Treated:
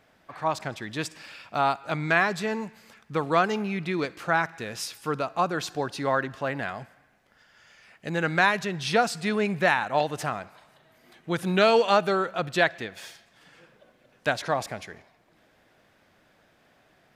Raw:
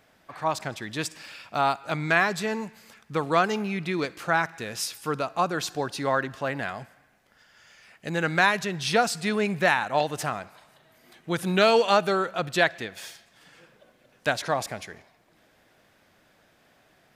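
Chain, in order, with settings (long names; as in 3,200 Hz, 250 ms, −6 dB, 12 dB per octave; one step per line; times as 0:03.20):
high-shelf EQ 5,300 Hz −6 dB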